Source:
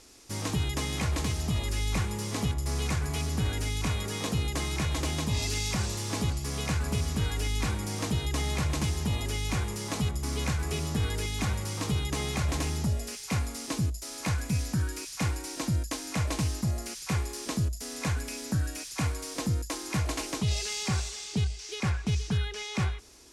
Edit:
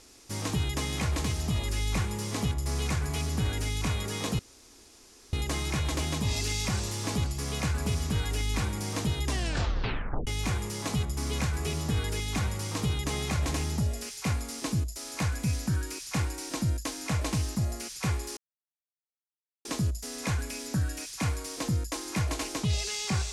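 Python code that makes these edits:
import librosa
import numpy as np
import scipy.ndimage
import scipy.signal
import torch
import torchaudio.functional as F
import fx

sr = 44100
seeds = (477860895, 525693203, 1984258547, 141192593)

y = fx.edit(x, sr, fx.insert_room_tone(at_s=4.39, length_s=0.94),
    fx.tape_stop(start_s=8.32, length_s=1.01),
    fx.insert_silence(at_s=17.43, length_s=1.28), tone=tone)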